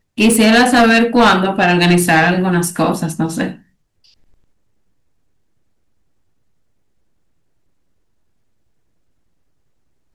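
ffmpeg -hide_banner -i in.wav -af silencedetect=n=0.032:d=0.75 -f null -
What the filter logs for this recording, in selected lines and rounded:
silence_start: 3.56
silence_end: 10.14 | silence_duration: 6.58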